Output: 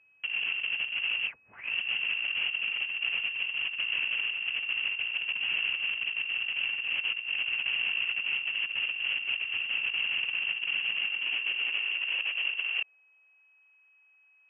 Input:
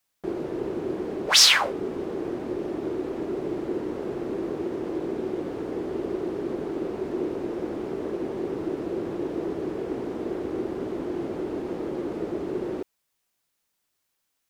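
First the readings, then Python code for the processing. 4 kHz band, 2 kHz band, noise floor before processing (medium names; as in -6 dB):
-2.5 dB, +6.5 dB, -77 dBFS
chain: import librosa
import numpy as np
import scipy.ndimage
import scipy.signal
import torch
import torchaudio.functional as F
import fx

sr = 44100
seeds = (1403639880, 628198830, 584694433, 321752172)

y = fx.over_compress(x, sr, threshold_db=-32.0, ratio=-0.5)
y = y + 10.0 ** (-61.0 / 20.0) * np.sin(2.0 * np.pi * 550.0 * np.arange(len(y)) / sr)
y = fx.freq_invert(y, sr, carrier_hz=3100)
y = fx.filter_sweep_highpass(y, sr, from_hz=82.0, to_hz=870.0, start_s=9.78, end_s=13.61, q=1.2)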